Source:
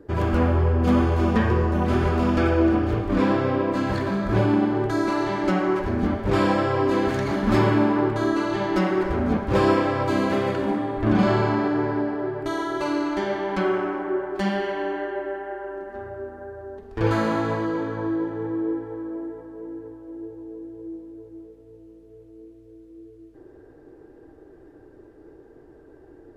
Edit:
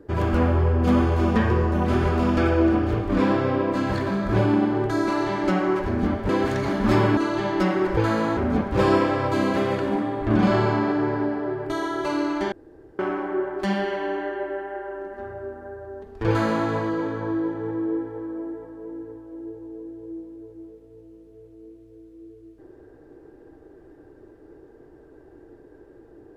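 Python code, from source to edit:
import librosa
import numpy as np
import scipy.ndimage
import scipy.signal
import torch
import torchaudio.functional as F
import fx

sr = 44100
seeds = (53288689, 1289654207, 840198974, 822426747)

y = fx.edit(x, sr, fx.cut(start_s=6.29, length_s=0.63),
    fx.cut(start_s=7.8, length_s=0.53),
    fx.room_tone_fill(start_s=13.28, length_s=0.47),
    fx.duplicate(start_s=17.04, length_s=0.4, to_s=9.13), tone=tone)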